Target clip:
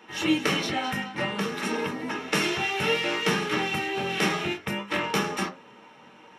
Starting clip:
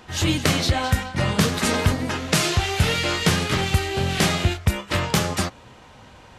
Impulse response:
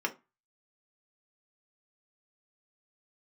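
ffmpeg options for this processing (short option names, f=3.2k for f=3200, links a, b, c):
-filter_complex "[0:a]asettb=1/sr,asplit=3[a][b][c];[a]atrim=end=1.244[d];[b]atrim=start=1.24:end=2.31,asetpts=PTS-STARTPTS,afade=t=in:d=0.004:c=qsin,afade=t=out:st=1.066:d=0.004:c=qsin,acompressor=threshold=-24dB:ratio=2[e];[c]atrim=start=2.306[f];[d][e]acrossfade=d=0.004:c1=hsin:c2=qsin[g];[g][f]acrossfade=d=0.004:c1=qsin:c2=hsin[h];[1:a]atrim=start_sample=2205[i];[h][i]afir=irnorm=-1:irlink=0,volume=-8.5dB"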